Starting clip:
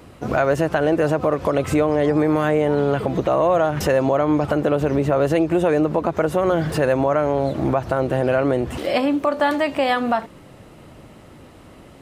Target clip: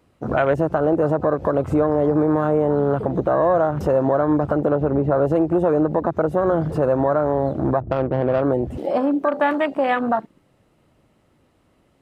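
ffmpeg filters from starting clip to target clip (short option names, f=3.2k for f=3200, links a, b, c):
-filter_complex "[0:a]asplit=3[a][b][c];[a]afade=t=out:st=4.73:d=0.02[d];[b]lowpass=3.4k,afade=t=in:st=4.73:d=0.02,afade=t=out:st=5.24:d=0.02[e];[c]afade=t=in:st=5.24:d=0.02[f];[d][e][f]amix=inputs=3:normalize=0,afwtdn=0.0631,asettb=1/sr,asplit=3[g][h][i];[g]atrim=end=7.804[j];[h]atrim=start=7.8:end=8.42,asetpts=PTS-STARTPTS,afade=t=in:d=0.004:c=qsin,afade=t=out:st=0.616:d=0.004:c=qsin,adynamicsmooth=sensitivity=0.5:basefreq=640[k];[i]atrim=start=8.416[l];[j][k]acrossfade=d=0.004:c1=hsin:c2=qsin[m];[m][l]acrossfade=d=0.004:c1=qsin:c2=hsin"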